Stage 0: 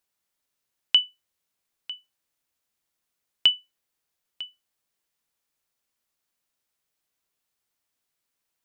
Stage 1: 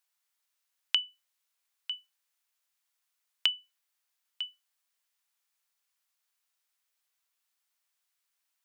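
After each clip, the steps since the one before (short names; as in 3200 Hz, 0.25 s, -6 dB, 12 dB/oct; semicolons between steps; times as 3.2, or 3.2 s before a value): HPF 910 Hz 12 dB/oct; compressor, threshold -24 dBFS, peak gain reduction 10 dB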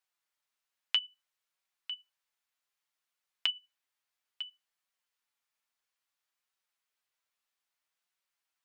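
high shelf 5100 Hz -9 dB; flange 0.61 Hz, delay 5.1 ms, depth 3.6 ms, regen +40%; gain +3 dB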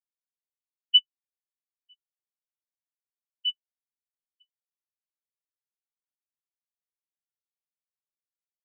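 spectral expander 4:1; gain +2 dB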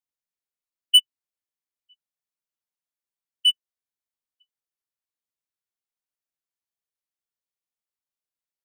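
sample leveller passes 2; in parallel at -4.5 dB: overloaded stage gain 21 dB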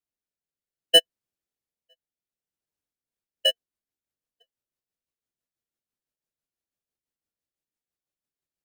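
rotary speaker horn 0.6 Hz, later 6 Hz, at 2.62; in parallel at -6 dB: sample-and-hold 38×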